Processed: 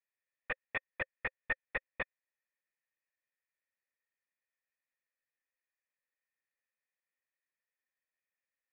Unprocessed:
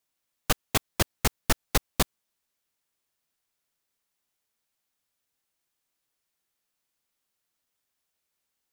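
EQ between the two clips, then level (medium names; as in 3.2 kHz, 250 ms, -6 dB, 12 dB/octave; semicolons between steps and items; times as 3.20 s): cascade formant filter e; resonant low shelf 780 Hz -11 dB, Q 1.5; +7.5 dB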